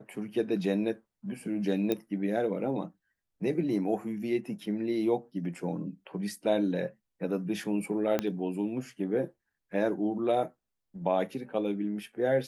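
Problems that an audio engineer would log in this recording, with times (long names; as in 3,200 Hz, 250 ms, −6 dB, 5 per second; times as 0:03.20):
0:01.92: click −16 dBFS
0:08.19: click −14 dBFS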